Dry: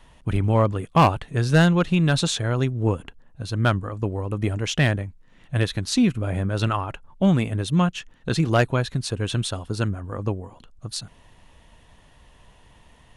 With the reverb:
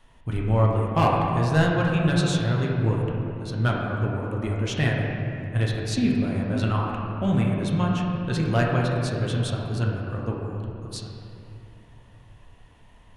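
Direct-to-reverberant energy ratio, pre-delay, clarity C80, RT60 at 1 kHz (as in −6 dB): −2.5 dB, 8 ms, 1.5 dB, 2.7 s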